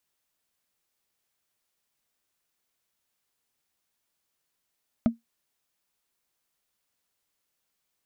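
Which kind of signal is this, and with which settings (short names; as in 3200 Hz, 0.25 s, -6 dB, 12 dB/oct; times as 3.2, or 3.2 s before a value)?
wood hit, lowest mode 231 Hz, decay 0.15 s, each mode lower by 8.5 dB, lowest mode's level -13.5 dB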